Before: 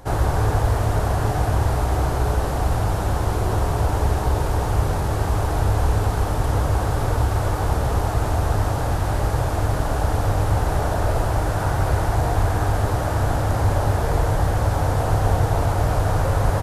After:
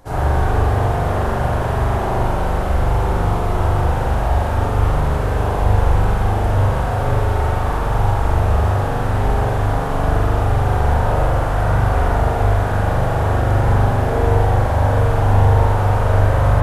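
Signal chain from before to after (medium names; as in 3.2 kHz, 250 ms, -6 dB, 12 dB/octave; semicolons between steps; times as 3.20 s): spring tank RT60 1.4 s, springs 41 ms, chirp 80 ms, DRR -8.5 dB; trim -5 dB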